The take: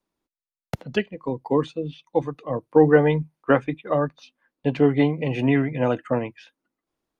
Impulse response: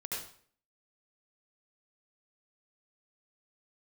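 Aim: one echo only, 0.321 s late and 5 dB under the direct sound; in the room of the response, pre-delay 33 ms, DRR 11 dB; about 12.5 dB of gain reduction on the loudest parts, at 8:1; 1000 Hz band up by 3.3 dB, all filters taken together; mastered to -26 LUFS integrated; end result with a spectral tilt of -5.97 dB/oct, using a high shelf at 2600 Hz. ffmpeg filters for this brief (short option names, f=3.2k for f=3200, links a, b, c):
-filter_complex "[0:a]equalizer=f=1k:t=o:g=4,highshelf=f=2.6k:g=3,acompressor=threshold=-22dB:ratio=8,aecho=1:1:321:0.562,asplit=2[a][b];[1:a]atrim=start_sample=2205,adelay=33[c];[b][c]afir=irnorm=-1:irlink=0,volume=-12.5dB[d];[a][d]amix=inputs=2:normalize=0,volume=2.5dB"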